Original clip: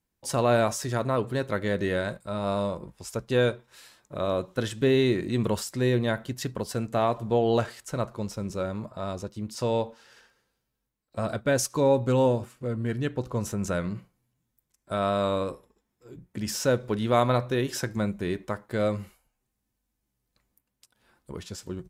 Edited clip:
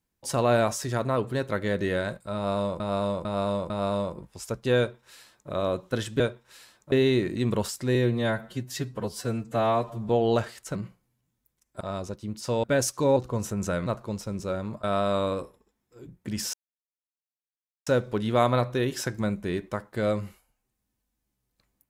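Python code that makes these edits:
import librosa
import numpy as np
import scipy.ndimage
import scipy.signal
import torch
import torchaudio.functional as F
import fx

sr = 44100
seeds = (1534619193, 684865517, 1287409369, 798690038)

y = fx.edit(x, sr, fx.repeat(start_s=2.35, length_s=0.45, count=4),
    fx.duplicate(start_s=3.43, length_s=0.72, to_s=4.85),
    fx.stretch_span(start_s=5.88, length_s=1.43, factor=1.5),
    fx.swap(start_s=7.97, length_s=0.97, other_s=13.88, other_length_s=1.05),
    fx.cut(start_s=9.77, length_s=1.63),
    fx.cut(start_s=11.93, length_s=1.25),
    fx.insert_silence(at_s=16.63, length_s=1.33), tone=tone)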